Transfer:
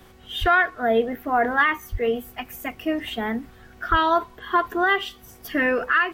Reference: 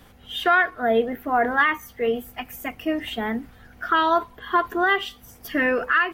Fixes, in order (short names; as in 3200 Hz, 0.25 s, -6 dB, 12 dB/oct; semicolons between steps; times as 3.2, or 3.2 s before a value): de-hum 373.3 Hz, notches 24; de-plosive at 0.4/1.91/3.9